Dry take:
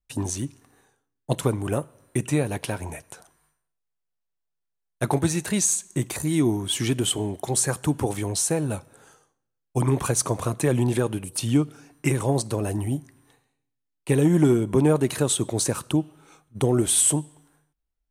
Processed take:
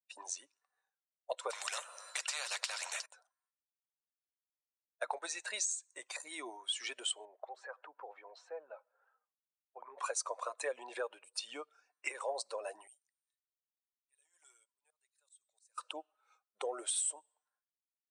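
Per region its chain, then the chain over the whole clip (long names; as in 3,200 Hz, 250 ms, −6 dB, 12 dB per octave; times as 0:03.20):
0:01.50–0:03.06: high-shelf EQ 2,300 Hz +12 dB + upward compression, threshold −44 dBFS + every bin compressed towards the loudest bin 4 to 1
0:07.25–0:09.98: low-pass filter 1,900 Hz + downward compressor 2 to 1, threshold −31 dBFS
0:10.76–0:11.42: high-pass filter 100 Hz + high-shelf EQ 9,600 Hz −6.5 dB
0:12.87–0:15.78: first difference + volume swells 662 ms
whole clip: spectral dynamics exaggerated over time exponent 1.5; Chebyshev band-pass filter 520–8,500 Hz, order 4; downward compressor 4 to 1, threshold −32 dBFS; level −2 dB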